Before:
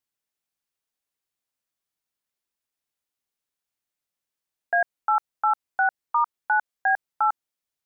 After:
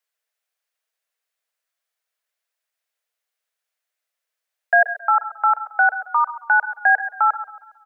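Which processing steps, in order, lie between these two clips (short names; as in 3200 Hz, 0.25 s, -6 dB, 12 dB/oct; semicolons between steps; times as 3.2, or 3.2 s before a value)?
rippled Chebyshev high-pass 450 Hz, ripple 6 dB; echo 0.129 s -16 dB; warbling echo 0.137 s, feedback 46%, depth 58 cents, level -17.5 dB; gain +8.5 dB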